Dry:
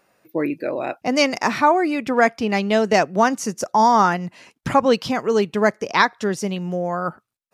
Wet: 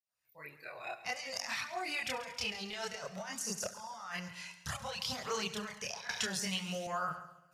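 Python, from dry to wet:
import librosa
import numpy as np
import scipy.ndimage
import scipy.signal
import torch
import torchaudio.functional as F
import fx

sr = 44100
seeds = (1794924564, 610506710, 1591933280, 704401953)

p1 = fx.fade_in_head(x, sr, length_s=1.56)
p2 = fx.tone_stack(p1, sr, knobs='10-0-10')
p3 = fx.over_compress(p2, sr, threshold_db=-36.0, ratio=-1.0)
p4 = fx.filter_lfo_notch(p3, sr, shape='sine', hz=2.4, low_hz=260.0, high_hz=2400.0, q=1.1)
p5 = p4 + fx.echo_heads(p4, sr, ms=68, heads='first and second', feedback_pct=52, wet_db=-16, dry=0)
p6 = fx.chorus_voices(p5, sr, voices=2, hz=0.28, base_ms=27, depth_ms=1.4, mix_pct=55)
y = fx.band_squash(p6, sr, depth_pct=100, at=(6.09, 6.87))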